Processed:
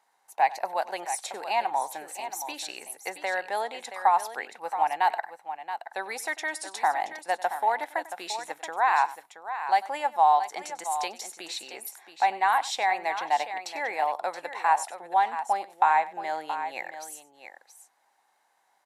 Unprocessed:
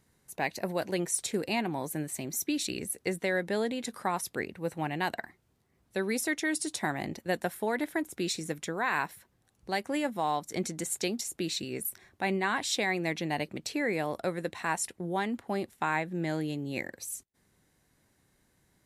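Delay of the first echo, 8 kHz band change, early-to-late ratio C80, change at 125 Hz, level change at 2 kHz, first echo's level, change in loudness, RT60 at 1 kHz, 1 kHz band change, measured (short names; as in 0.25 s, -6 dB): 96 ms, -3.0 dB, none, under -25 dB, +2.0 dB, -18.5 dB, +4.5 dB, none, +11.5 dB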